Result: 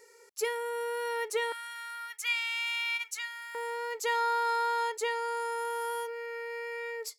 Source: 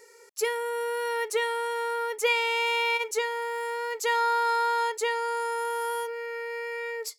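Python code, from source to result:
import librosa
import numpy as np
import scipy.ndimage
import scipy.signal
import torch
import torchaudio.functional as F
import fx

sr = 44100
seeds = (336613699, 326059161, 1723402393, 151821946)

y = fx.highpass(x, sr, hz=1400.0, slope=24, at=(1.52, 3.55))
y = y * 10.0 ** (-4.0 / 20.0)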